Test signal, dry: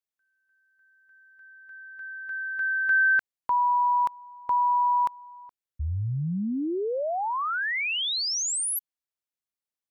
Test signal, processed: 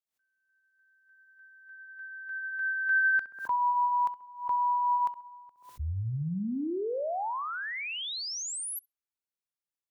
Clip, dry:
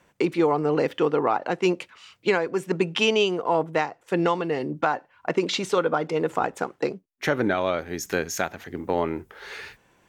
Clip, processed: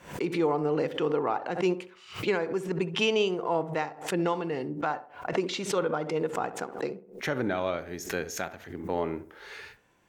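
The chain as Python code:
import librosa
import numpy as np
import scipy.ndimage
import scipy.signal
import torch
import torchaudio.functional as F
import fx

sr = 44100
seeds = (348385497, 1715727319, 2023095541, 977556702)

y = fx.hpss(x, sr, part='harmonic', gain_db=4)
y = fx.echo_tape(y, sr, ms=66, feedback_pct=43, wet_db=-11.5, lp_hz=1300.0, drive_db=7.0, wow_cents=12)
y = fx.pre_swell(y, sr, db_per_s=130.0)
y = F.gain(torch.from_numpy(y), -8.0).numpy()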